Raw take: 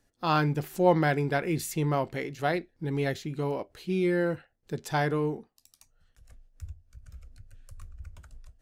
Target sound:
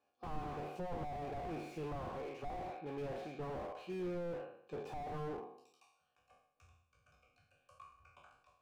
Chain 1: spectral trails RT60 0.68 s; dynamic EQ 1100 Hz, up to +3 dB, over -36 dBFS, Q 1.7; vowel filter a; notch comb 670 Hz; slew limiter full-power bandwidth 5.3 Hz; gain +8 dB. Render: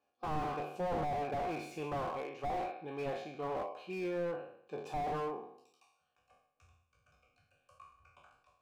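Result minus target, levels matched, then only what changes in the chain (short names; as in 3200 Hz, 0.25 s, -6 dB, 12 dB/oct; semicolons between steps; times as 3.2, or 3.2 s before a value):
slew limiter: distortion -6 dB
change: slew limiter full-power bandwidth 2 Hz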